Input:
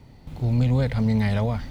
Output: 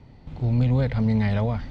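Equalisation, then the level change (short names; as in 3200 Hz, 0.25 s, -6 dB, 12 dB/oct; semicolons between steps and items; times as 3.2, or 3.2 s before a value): air absorption 120 m; 0.0 dB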